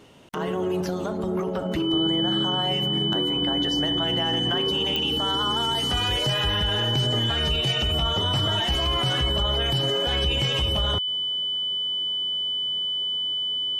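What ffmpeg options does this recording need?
-af "adeclick=t=4,bandreject=f=3k:w=30"

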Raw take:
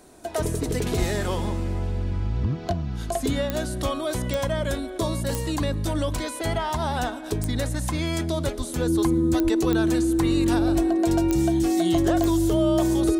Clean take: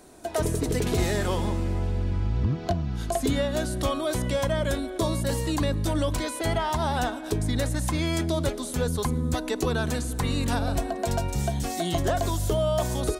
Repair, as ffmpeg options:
-filter_complex "[0:a]adeclick=t=4,bandreject=f=330:w=30,asplit=3[a][b][c];[a]afade=t=out:st=0.98:d=0.02[d];[b]highpass=f=140:w=0.5412,highpass=f=140:w=1.3066,afade=t=in:st=0.98:d=0.02,afade=t=out:st=1.1:d=0.02[e];[c]afade=t=in:st=1.1:d=0.02[f];[d][e][f]amix=inputs=3:normalize=0,asplit=3[g][h][i];[g]afade=t=out:st=8.57:d=0.02[j];[h]highpass=f=140:w=0.5412,highpass=f=140:w=1.3066,afade=t=in:st=8.57:d=0.02,afade=t=out:st=8.69:d=0.02[k];[i]afade=t=in:st=8.69:d=0.02[l];[j][k][l]amix=inputs=3:normalize=0,asplit=3[m][n][o];[m]afade=t=out:st=9.43:d=0.02[p];[n]highpass=f=140:w=0.5412,highpass=f=140:w=1.3066,afade=t=in:st=9.43:d=0.02,afade=t=out:st=9.55:d=0.02[q];[o]afade=t=in:st=9.55:d=0.02[r];[p][q][r]amix=inputs=3:normalize=0"

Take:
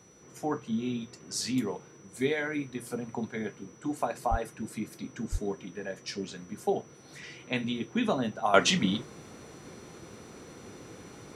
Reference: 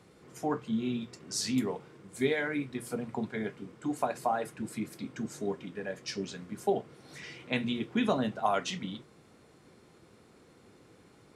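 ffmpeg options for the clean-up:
-filter_complex "[0:a]adeclick=t=4,bandreject=f=5.9k:w=30,asplit=3[a][b][c];[a]afade=t=out:st=4.3:d=0.02[d];[b]highpass=f=140:w=0.5412,highpass=f=140:w=1.3066,afade=t=in:st=4.3:d=0.02,afade=t=out:st=4.42:d=0.02[e];[c]afade=t=in:st=4.42:d=0.02[f];[d][e][f]amix=inputs=3:normalize=0,asplit=3[g][h][i];[g]afade=t=out:st=5.31:d=0.02[j];[h]highpass=f=140:w=0.5412,highpass=f=140:w=1.3066,afade=t=in:st=5.31:d=0.02,afade=t=out:st=5.43:d=0.02[k];[i]afade=t=in:st=5.43:d=0.02[l];[j][k][l]amix=inputs=3:normalize=0,asetnsamples=n=441:p=0,asendcmd='8.54 volume volume -11dB',volume=0dB"

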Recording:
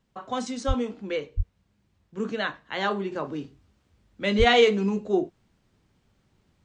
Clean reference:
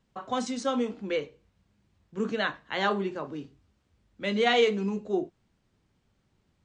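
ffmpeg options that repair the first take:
-filter_complex "[0:a]asplit=3[a][b][c];[a]afade=t=out:st=0.67:d=0.02[d];[b]highpass=f=140:w=0.5412,highpass=f=140:w=1.3066,afade=t=in:st=0.67:d=0.02,afade=t=out:st=0.79:d=0.02[e];[c]afade=t=in:st=0.79:d=0.02[f];[d][e][f]amix=inputs=3:normalize=0,asplit=3[g][h][i];[g]afade=t=out:st=1.36:d=0.02[j];[h]highpass=f=140:w=0.5412,highpass=f=140:w=1.3066,afade=t=in:st=1.36:d=0.02,afade=t=out:st=1.48:d=0.02[k];[i]afade=t=in:st=1.48:d=0.02[l];[j][k][l]amix=inputs=3:normalize=0,asplit=3[m][n][o];[m]afade=t=out:st=4.38:d=0.02[p];[n]highpass=f=140:w=0.5412,highpass=f=140:w=1.3066,afade=t=in:st=4.38:d=0.02,afade=t=out:st=4.5:d=0.02[q];[o]afade=t=in:st=4.5:d=0.02[r];[p][q][r]amix=inputs=3:normalize=0,asetnsamples=n=441:p=0,asendcmd='3.12 volume volume -4.5dB',volume=0dB"

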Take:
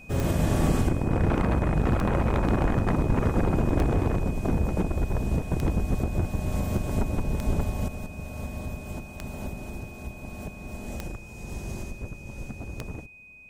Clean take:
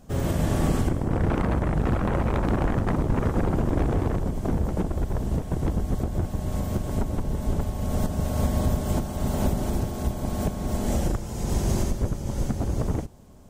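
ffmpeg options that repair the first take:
-af "adeclick=t=4,bandreject=f=2.5k:w=30,asetnsamples=n=441:p=0,asendcmd='7.88 volume volume 11dB',volume=0dB"

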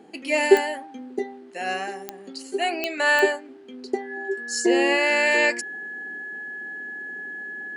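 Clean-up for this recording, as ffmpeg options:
-af "adeclick=t=4,bandreject=f=1.7k:w=30"

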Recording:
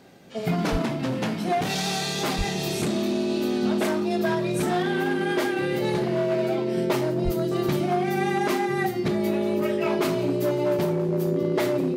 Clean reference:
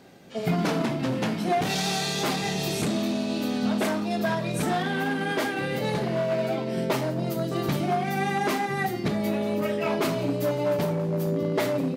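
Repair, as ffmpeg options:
-filter_complex "[0:a]bandreject=f=360:w=30,asplit=3[a][b][c];[a]afade=t=out:st=0.71:d=0.02[d];[b]highpass=f=140:w=0.5412,highpass=f=140:w=1.3066,afade=t=in:st=0.71:d=0.02,afade=t=out:st=0.83:d=0.02[e];[c]afade=t=in:st=0.83:d=0.02[f];[d][e][f]amix=inputs=3:normalize=0,asplit=3[g][h][i];[g]afade=t=out:st=2.37:d=0.02[j];[h]highpass=f=140:w=0.5412,highpass=f=140:w=1.3066,afade=t=in:st=2.37:d=0.02,afade=t=out:st=2.49:d=0.02[k];[i]afade=t=in:st=2.49:d=0.02[l];[j][k][l]amix=inputs=3:normalize=0,asplit=3[m][n][o];[m]afade=t=out:st=7.24:d=0.02[p];[n]highpass=f=140:w=0.5412,highpass=f=140:w=1.3066,afade=t=in:st=7.24:d=0.02,afade=t=out:st=7.36:d=0.02[q];[o]afade=t=in:st=7.36:d=0.02[r];[p][q][r]amix=inputs=3:normalize=0"

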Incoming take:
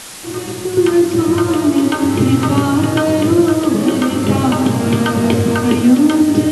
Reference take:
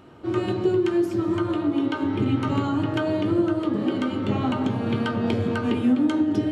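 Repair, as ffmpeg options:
-af "adeclick=t=4,afwtdn=0.032,asetnsamples=n=441:p=0,asendcmd='0.77 volume volume -10dB',volume=0dB"

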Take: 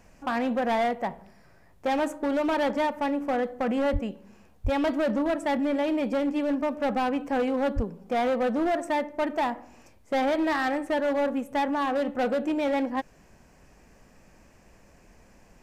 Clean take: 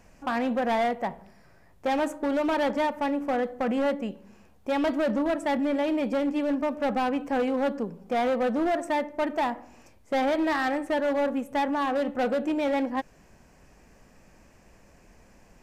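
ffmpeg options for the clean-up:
-filter_complex "[0:a]asplit=3[a][b][c];[a]afade=t=out:st=3.92:d=0.02[d];[b]highpass=f=140:w=0.5412,highpass=f=140:w=1.3066,afade=t=in:st=3.92:d=0.02,afade=t=out:st=4.04:d=0.02[e];[c]afade=t=in:st=4.04:d=0.02[f];[d][e][f]amix=inputs=3:normalize=0,asplit=3[g][h][i];[g]afade=t=out:st=4.63:d=0.02[j];[h]highpass=f=140:w=0.5412,highpass=f=140:w=1.3066,afade=t=in:st=4.63:d=0.02,afade=t=out:st=4.75:d=0.02[k];[i]afade=t=in:st=4.75:d=0.02[l];[j][k][l]amix=inputs=3:normalize=0,asplit=3[m][n][o];[m]afade=t=out:st=7.75:d=0.02[p];[n]highpass=f=140:w=0.5412,highpass=f=140:w=1.3066,afade=t=in:st=7.75:d=0.02,afade=t=out:st=7.87:d=0.02[q];[o]afade=t=in:st=7.87:d=0.02[r];[p][q][r]amix=inputs=3:normalize=0"

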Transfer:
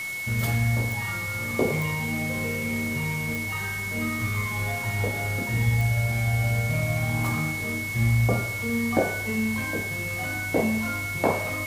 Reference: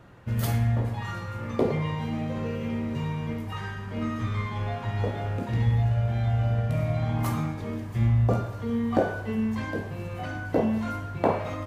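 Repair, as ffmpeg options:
-af "adeclick=t=4,bandreject=f=2.2k:w=30,afwtdn=0.01"

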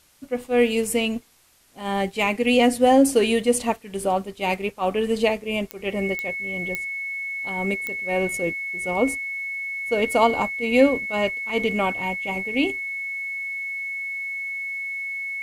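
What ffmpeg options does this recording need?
-af "adeclick=t=4,bandreject=f=2.2k:w=30,agate=range=-21dB:threshold=-30dB"

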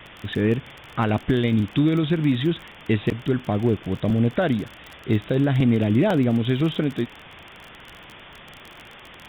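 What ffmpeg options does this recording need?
-af "adeclick=t=4,afwtdn=0.014"

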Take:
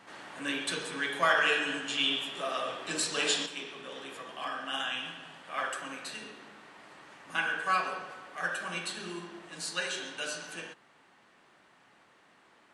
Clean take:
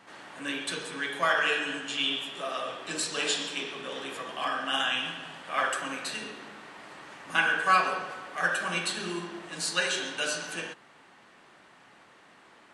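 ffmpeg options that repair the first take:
-af "asetnsamples=n=441:p=0,asendcmd='3.46 volume volume 6dB',volume=0dB"

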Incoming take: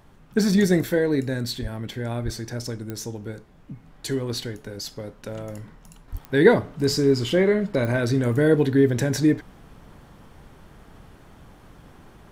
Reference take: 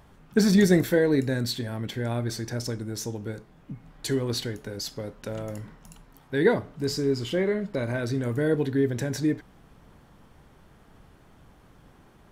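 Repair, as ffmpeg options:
-filter_complex "[0:a]adeclick=t=4,asplit=3[a][b][c];[a]afade=t=out:st=1.61:d=0.02[d];[b]highpass=f=140:w=0.5412,highpass=f=140:w=1.3066,afade=t=in:st=1.61:d=0.02,afade=t=out:st=1.73:d=0.02[e];[c]afade=t=in:st=1.73:d=0.02[f];[d][e][f]amix=inputs=3:normalize=0,asplit=3[g][h][i];[g]afade=t=out:st=2.24:d=0.02[j];[h]highpass=f=140:w=0.5412,highpass=f=140:w=1.3066,afade=t=in:st=2.24:d=0.02,afade=t=out:st=2.36:d=0.02[k];[i]afade=t=in:st=2.36:d=0.02[l];[j][k][l]amix=inputs=3:normalize=0,asplit=3[m][n][o];[m]afade=t=out:st=6.11:d=0.02[p];[n]highpass=f=140:w=0.5412,highpass=f=140:w=1.3066,afade=t=in:st=6.11:d=0.02,afade=t=out:st=6.23:d=0.02[q];[o]afade=t=in:st=6.23:d=0.02[r];[p][q][r]amix=inputs=3:normalize=0,agate=range=-21dB:threshold=-42dB,asetnsamples=n=441:p=0,asendcmd='6.08 volume volume -6dB',volume=0dB"

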